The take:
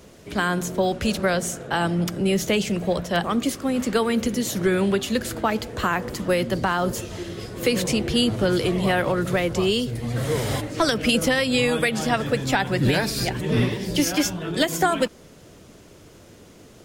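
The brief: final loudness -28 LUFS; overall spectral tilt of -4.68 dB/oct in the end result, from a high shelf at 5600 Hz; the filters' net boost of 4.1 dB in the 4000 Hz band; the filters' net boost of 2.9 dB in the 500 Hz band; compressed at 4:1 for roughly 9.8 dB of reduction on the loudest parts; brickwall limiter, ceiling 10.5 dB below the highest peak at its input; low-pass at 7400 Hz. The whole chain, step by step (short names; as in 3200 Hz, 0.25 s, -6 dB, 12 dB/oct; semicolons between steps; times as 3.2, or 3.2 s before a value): LPF 7400 Hz; bell 500 Hz +3.5 dB; bell 4000 Hz +7 dB; high shelf 5600 Hz -3 dB; compressor 4:1, threshold -26 dBFS; gain +4.5 dB; limiter -19.5 dBFS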